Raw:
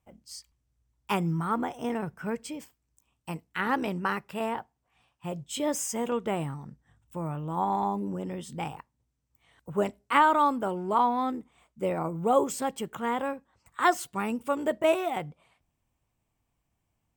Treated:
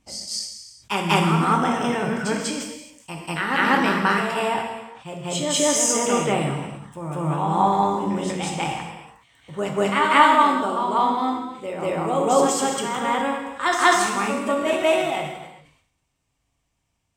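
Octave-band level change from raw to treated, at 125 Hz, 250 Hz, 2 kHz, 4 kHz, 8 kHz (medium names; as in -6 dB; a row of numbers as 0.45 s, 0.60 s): +8.0 dB, +7.5 dB, +11.0 dB, +14.0 dB, +14.0 dB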